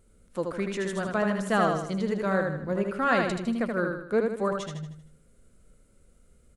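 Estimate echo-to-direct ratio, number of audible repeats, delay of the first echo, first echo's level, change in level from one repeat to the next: -3.0 dB, 5, 78 ms, -4.0 dB, -7.0 dB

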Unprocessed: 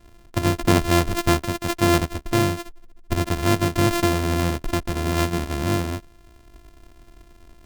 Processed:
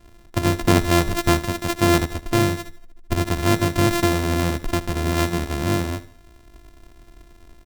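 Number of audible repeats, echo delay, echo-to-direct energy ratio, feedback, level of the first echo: 3, 76 ms, -15.5 dB, 40%, -16.5 dB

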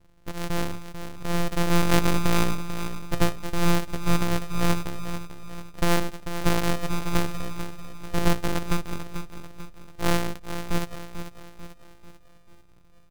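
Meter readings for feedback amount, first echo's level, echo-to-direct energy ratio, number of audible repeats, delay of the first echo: 47%, -10.0 dB, -9.0 dB, 4, 442 ms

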